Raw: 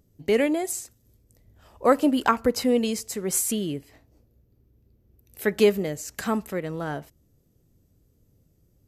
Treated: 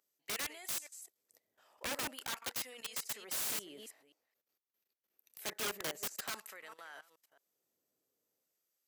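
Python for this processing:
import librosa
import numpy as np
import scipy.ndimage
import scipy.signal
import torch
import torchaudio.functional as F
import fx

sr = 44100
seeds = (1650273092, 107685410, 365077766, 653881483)

y = fx.reverse_delay(x, sr, ms=217, wet_db=-13.0)
y = fx.filter_lfo_highpass(y, sr, shape='sine', hz=0.47, low_hz=570.0, high_hz=1600.0, q=0.71)
y = fx.level_steps(y, sr, step_db=17)
y = (np.mod(10.0 ** (31.5 / 20.0) * y + 1.0, 2.0) - 1.0) / 10.0 ** (31.5 / 20.0)
y = fx.highpass(y, sr, hz=100.0, slope=6)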